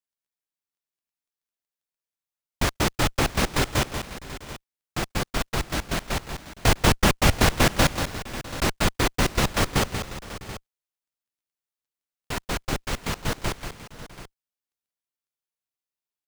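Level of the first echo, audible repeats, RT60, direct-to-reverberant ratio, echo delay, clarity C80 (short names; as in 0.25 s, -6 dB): -7.5 dB, 3, none, none, 0.186 s, none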